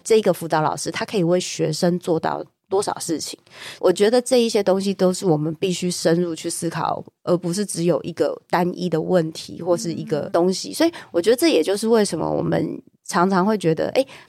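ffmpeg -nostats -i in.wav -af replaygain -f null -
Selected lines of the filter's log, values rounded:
track_gain = +0.0 dB
track_peak = 0.351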